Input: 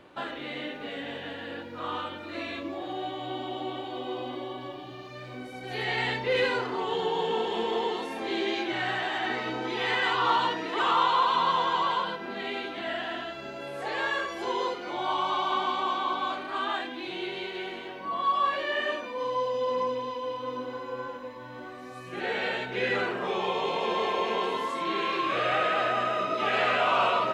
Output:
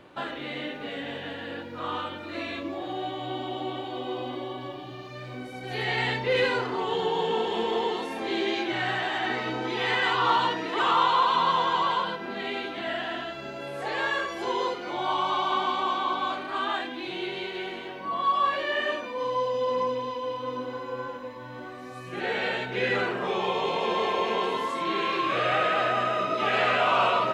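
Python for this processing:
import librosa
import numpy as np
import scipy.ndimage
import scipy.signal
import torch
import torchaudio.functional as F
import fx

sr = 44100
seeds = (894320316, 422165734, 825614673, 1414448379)

y = fx.peak_eq(x, sr, hz=130.0, db=3.0, octaves=0.95)
y = F.gain(torch.from_numpy(y), 1.5).numpy()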